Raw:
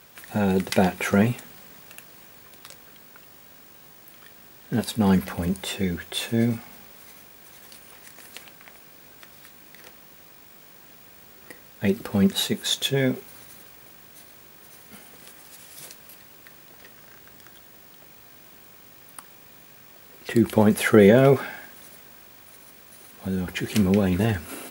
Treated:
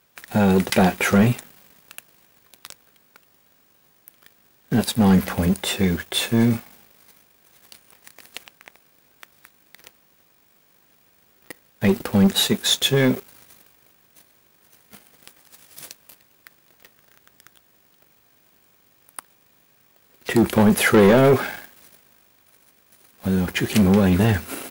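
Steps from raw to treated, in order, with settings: sample leveller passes 3; gain -5 dB

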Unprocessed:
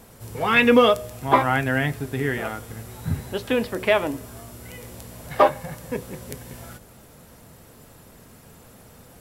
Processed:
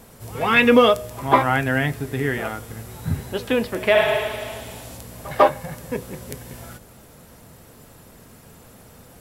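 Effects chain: spectral repair 3.98–4.95, 230–12000 Hz both; on a send: reverse echo 0.148 s -22.5 dB; on the sum: gain +1.5 dB

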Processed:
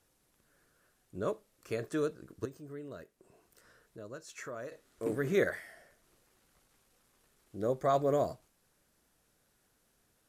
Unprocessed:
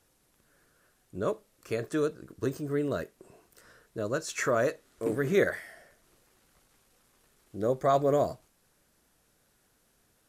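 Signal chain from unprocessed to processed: 2.45–4.72 compressor 1.5:1, threshold -58 dBFS, peak gain reduction 12.5 dB; gain -4 dB

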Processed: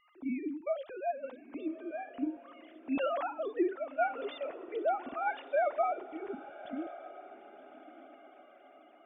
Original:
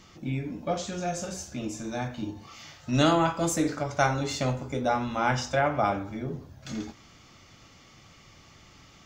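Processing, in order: sine-wave speech; tilt -1.5 dB/oct; on a send: diffused feedback echo 1.182 s, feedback 41%, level -15 dB; on the sum: gain -8 dB

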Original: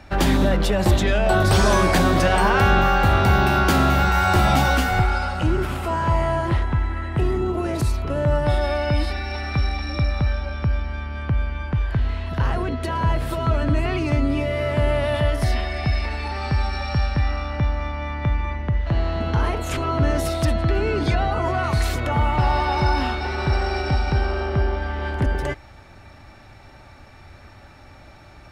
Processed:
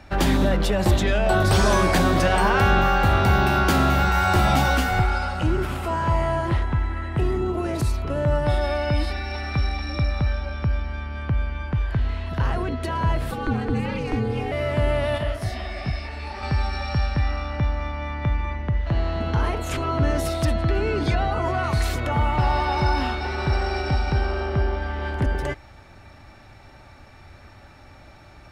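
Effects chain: 13.31–14.52 ring modulator 170 Hz; 15.18–16.43 detuned doubles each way 56 cents; gain -1.5 dB

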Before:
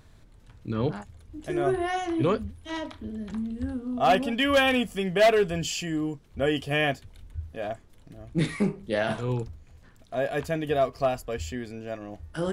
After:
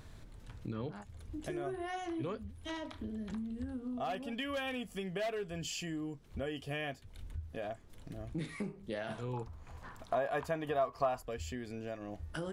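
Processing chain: compressor 4:1, threshold -41 dBFS, peak gain reduction 20 dB; 9.33–11.23 bell 1000 Hz +14 dB 1.2 oct; gain +1.5 dB

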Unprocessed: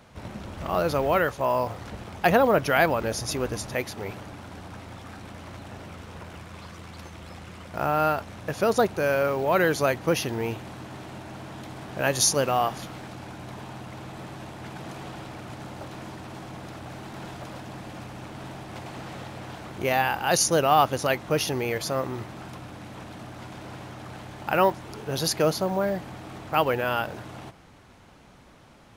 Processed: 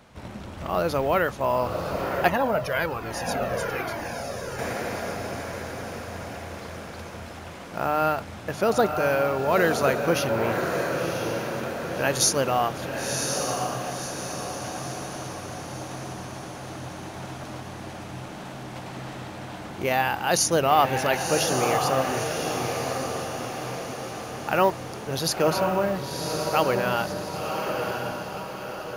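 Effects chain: notches 50/100/150 Hz; diffused feedback echo 1.041 s, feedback 52%, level -4 dB; 2.28–4.59 cascading flanger falling 1.2 Hz

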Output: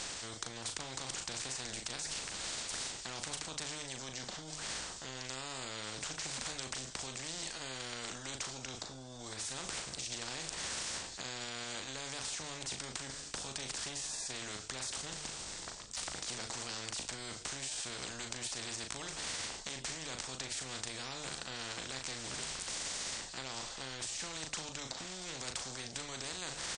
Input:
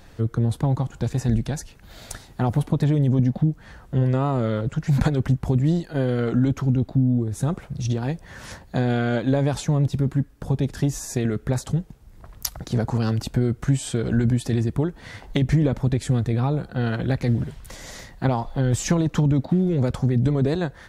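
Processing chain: steep low-pass 8600 Hz 96 dB/oct; tone controls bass -7 dB, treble +14 dB; notches 50/100/150 Hz; reverse; compressor 10:1, threshold -34 dBFS, peak gain reduction 22 dB; reverse; bell 5200 Hz +9.5 dB 1.7 oct; limiter -27 dBFS, peak gain reduction 18 dB; tempo 0.78×; doubler 38 ms -8 dB; spectral compressor 4:1; gain +6 dB

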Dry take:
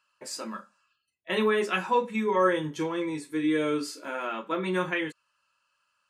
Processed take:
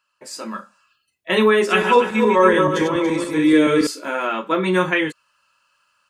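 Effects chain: 1.54–3.87 regenerating reverse delay 0.142 s, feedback 52%, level -4.5 dB; AGC gain up to 9 dB; gain +1 dB

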